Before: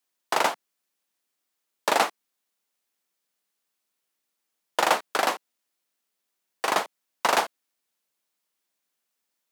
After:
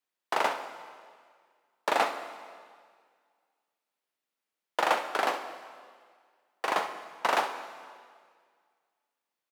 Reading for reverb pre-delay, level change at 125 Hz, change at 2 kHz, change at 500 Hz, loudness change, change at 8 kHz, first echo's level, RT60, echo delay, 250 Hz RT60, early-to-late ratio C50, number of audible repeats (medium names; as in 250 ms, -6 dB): 6 ms, no reading, -3.5 dB, -3.5 dB, -4.5 dB, -10.5 dB, -12.0 dB, 1.9 s, 66 ms, 1.8 s, 8.0 dB, 1